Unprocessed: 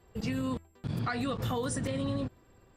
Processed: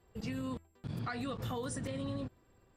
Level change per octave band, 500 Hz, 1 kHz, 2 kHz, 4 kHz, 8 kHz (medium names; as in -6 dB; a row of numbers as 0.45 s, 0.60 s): -6.0 dB, -6.0 dB, -6.0 dB, -6.0 dB, -6.0 dB